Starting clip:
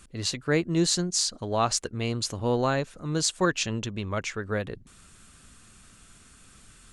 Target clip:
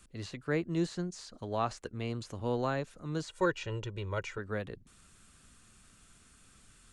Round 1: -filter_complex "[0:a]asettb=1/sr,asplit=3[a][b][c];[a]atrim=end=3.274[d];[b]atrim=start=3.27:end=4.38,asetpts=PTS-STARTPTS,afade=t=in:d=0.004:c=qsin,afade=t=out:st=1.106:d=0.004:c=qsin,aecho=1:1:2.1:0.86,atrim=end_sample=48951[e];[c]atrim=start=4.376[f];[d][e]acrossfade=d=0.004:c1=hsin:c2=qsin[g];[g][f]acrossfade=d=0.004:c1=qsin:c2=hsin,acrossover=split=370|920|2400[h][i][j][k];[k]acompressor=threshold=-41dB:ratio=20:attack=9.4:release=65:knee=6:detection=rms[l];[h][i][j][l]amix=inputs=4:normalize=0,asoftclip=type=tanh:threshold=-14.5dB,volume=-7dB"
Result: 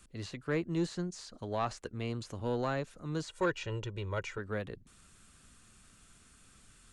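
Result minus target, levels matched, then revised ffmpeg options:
soft clip: distortion +20 dB
-filter_complex "[0:a]asettb=1/sr,asplit=3[a][b][c];[a]atrim=end=3.274[d];[b]atrim=start=3.27:end=4.38,asetpts=PTS-STARTPTS,afade=t=in:d=0.004:c=qsin,afade=t=out:st=1.106:d=0.004:c=qsin,aecho=1:1:2.1:0.86,atrim=end_sample=48951[e];[c]atrim=start=4.376[f];[d][e]acrossfade=d=0.004:c1=hsin:c2=qsin[g];[g][f]acrossfade=d=0.004:c1=qsin:c2=hsin,acrossover=split=370|920|2400[h][i][j][k];[k]acompressor=threshold=-41dB:ratio=20:attack=9.4:release=65:knee=6:detection=rms[l];[h][i][j][l]amix=inputs=4:normalize=0,asoftclip=type=tanh:threshold=-3dB,volume=-7dB"

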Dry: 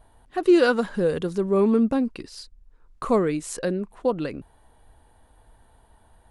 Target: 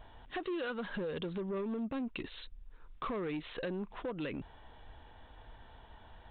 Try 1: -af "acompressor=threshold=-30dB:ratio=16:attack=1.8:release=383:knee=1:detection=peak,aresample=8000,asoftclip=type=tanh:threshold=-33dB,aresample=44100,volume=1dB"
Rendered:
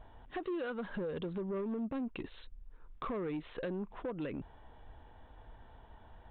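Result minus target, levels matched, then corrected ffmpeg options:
4000 Hz band -6.5 dB
-af "acompressor=threshold=-30dB:ratio=16:attack=1.8:release=383:knee=1:detection=peak,highshelf=f=2.2k:g=12,aresample=8000,asoftclip=type=tanh:threshold=-33dB,aresample=44100,volume=1dB"

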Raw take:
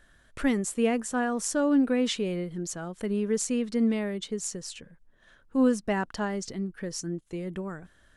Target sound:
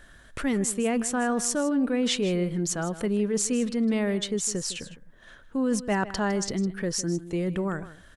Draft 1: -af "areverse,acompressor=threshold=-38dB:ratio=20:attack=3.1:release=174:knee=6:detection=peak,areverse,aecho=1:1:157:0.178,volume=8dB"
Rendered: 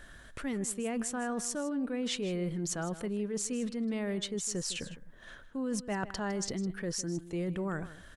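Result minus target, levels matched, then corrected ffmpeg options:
compressor: peak gain reduction +9 dB
-af "areverse,acompressor=threshold=-28.5dB:ratio=20:attack=3.1:release=174:knee=6:detection=peak,areverse,aecho=1:1:157:0.178,volume=8dB"

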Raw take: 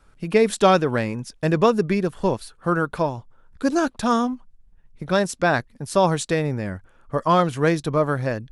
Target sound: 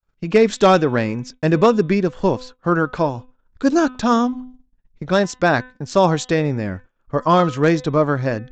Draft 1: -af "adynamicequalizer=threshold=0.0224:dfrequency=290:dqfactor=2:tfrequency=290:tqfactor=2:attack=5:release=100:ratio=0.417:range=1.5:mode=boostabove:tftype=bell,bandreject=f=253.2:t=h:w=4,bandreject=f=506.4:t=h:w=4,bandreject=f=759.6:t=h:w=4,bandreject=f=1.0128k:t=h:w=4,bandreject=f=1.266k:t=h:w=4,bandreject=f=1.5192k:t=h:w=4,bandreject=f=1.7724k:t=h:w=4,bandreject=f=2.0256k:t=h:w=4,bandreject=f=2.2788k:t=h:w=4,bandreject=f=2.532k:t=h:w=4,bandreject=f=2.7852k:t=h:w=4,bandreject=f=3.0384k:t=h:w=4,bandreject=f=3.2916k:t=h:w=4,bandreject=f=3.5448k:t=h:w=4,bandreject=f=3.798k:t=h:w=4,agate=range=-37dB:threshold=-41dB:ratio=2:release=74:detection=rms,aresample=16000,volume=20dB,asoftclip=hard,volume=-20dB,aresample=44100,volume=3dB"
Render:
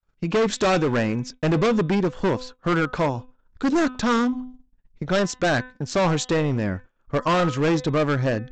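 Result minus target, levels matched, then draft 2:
overloaded stage: distortion +19 dB
-af "adynamicequalizer=threshold=0.0224:dfrequency=290:dqfactor=2:tfrequency=290:tqfactor=2:attack=5:release=100:ratio=0.417:range=1.5:mode=boostabove:tftype=bell,bandreject=f=253.2:t=h:w=4,bandreject=f=506.4:t=h:w=4,bandreject=f=759.6:t=h:w=4,bandreject=f=1.0128k:t=h:w=4,bandreject=f=1.266k:t=h:w=4,bandreject=f=1.5192k:t=h:w=4,bandreject=f=1.7724k:t=h:w=4,bandreject=f=2.0256k:t=h:w=4,bandreject=f=2.2788k:t=h:w=4,bandreject=f=2.532k:t=h:w=4,bandreject=f=2.7852k:t=h:w=4,bandreject=f=3.0384k:t=h:w=4,bandreject=f=3.2916k:t=h:w=4,bandreject=f=3.5448k:t=h:w=4,bandreject=f=3.798k:t=h:w=4,agate=range=-37dB:threshold=-41dB:ratio=2:release=74:detection=rms,aresample=16000,volume=8.5dB,asoftclip=hard,volume=-8.5dB,aresample=44100,volume=3dB"

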